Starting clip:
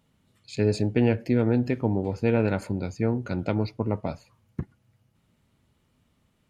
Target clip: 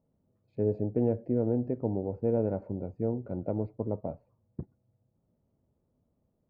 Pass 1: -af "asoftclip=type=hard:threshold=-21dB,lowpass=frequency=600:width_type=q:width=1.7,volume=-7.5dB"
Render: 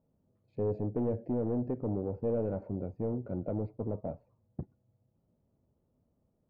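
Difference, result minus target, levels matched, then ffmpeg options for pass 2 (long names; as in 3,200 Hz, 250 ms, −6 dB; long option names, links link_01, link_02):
hard clipping: distortion +30 dB
-af "asoftclip=type=hard:threshold=-10.5dB,lowpass=frequency=600:width_type=q:width=1.7,volume=-7.5dB"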